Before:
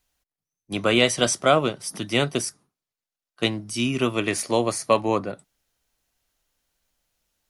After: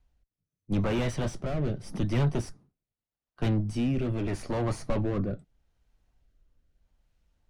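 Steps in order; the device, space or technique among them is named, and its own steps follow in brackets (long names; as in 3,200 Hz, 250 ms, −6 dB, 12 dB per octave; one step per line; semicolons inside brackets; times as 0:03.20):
overdriven rotary cabinet (tube saturation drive 29 dB, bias 0.3; rotating-speaker cabinet horn 0.8 Hz)
RIAA equalisation playback
parametric band 860 Hz +3 dB 0.77 octaves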